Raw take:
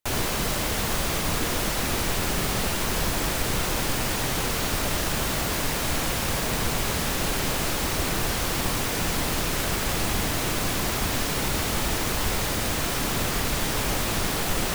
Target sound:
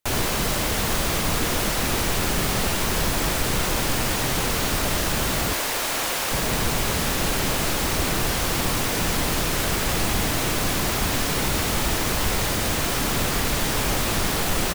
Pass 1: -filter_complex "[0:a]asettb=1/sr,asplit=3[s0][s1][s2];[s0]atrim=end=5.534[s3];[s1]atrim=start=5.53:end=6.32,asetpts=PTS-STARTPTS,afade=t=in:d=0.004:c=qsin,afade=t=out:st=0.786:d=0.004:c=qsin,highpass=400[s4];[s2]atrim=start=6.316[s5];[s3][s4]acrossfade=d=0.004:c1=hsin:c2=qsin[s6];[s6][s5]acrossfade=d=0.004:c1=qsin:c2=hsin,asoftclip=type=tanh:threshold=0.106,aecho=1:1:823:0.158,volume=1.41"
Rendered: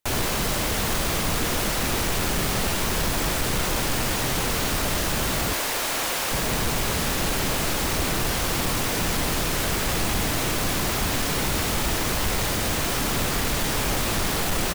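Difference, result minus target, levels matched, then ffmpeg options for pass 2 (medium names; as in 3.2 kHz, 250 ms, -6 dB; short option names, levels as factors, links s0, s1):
saturation: distortion +11 dB
-filter_complex "[0:a]asettb=1/sr,asplit=3[s0][s1][s2];[s0]atrim=end=5.534[s3];[s1]atrim=start=5.53:end=6.32,asetpts=PTS-STARTPTS,afade=t=in:d=0.004:c=qsin,afade=t=out:st=0.786:d=0.004:c=qsin,highpass=400[s4];[s2]atrim=start=6.316[s5];[s3][s4]acrossfade=d=0.004:c1=hsin:c2=qsin[s6];[s6][s5]acrossfade=d=0.004:c1=qsin:c2=hsin,asoftclip=type=tanh:threshold=0.237,aecho=1:1:823:0.158,volume=1.41"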